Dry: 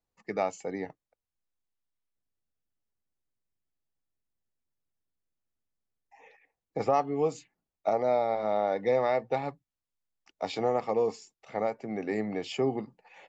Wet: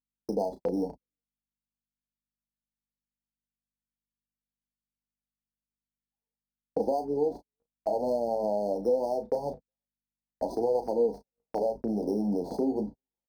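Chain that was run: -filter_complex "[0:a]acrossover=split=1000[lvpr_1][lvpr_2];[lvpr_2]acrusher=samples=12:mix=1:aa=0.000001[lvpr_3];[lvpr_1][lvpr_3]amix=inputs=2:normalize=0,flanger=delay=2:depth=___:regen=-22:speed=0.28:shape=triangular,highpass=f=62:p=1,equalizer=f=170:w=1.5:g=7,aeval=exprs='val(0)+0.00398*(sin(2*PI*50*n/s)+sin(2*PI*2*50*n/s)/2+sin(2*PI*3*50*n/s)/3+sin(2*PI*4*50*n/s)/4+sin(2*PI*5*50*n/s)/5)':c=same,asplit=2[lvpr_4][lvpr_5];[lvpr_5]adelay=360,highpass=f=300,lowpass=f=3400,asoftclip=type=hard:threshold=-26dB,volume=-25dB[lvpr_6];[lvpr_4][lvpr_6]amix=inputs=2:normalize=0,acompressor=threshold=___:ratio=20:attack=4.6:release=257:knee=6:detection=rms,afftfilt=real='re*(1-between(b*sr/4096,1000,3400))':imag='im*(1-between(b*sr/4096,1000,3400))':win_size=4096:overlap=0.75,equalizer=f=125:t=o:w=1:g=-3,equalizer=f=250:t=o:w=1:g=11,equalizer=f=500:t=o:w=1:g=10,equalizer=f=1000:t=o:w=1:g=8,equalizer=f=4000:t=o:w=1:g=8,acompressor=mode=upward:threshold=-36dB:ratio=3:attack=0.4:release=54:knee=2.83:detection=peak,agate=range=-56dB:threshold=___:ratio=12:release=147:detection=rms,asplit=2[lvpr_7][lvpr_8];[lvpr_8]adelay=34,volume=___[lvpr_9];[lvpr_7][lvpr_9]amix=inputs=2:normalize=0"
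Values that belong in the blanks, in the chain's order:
9.9, -34dB, -34dB, -9dB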